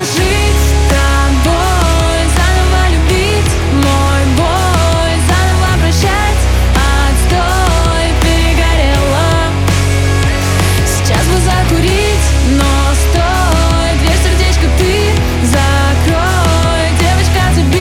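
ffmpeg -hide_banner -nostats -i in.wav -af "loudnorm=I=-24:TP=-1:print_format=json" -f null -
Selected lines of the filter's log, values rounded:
"input_i" : "-10.9",
"input_tp" : "-1.3",
"input_lra" : "0.3",
"input_thresh" : "-20.9",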